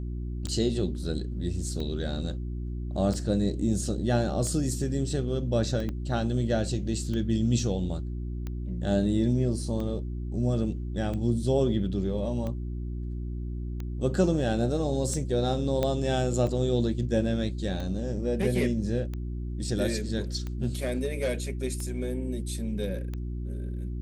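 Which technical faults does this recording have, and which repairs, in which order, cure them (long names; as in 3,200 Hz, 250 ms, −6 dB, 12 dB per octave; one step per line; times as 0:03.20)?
mains hum 60 Hz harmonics 6 −33 dBFS
scratch tick 45 rpm −23 dBFS
0:05.89: click −22 dBFS
0:15.83: click −14 dBFS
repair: click removal
hum removal 60 Hz, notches 6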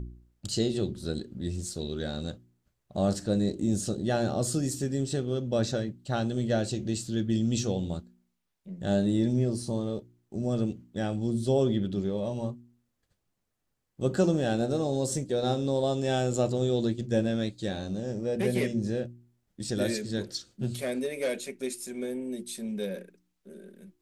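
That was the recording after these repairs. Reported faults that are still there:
0:05.89: click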